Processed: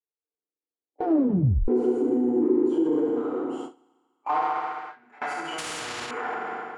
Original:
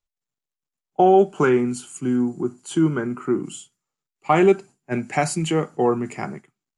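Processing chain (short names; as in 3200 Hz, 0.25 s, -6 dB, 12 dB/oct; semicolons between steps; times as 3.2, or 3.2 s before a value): ten-band EQ 125 Hz -9 dB, 250 Hz +8 dB, 500 Hz +6 dB, 1000 Hz +4 dB, 2000 Hz -9 dB, 4000 Hz -6 dB, 8000 Hz -7 dB; soft clip -16 dBFS, distortion -6 dB; overdrive pedal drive 23 dB, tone 6000 Hz, clips at -13.5 dBFS; 2.89–3.45 compressor, threshold -25 dBFS, peak gain reduction 8 dB; 4.37–4.97 passive tone stack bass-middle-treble 5-5-5; FDN reverb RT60 2 s, low-frequency decay 1×, high-frequency decay 0.9×, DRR -10 dB; limiter -6.5 dBFS, peak gain reduction 10.5 dB; band-pass sweep 380 Hz -> 1400 Hz, 2.65–4.86; gate with hold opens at -17 dBFS; 1.04 tape stop 0.64 s; 5.58–6.11 spectral compressor 4:1; gain -4 dB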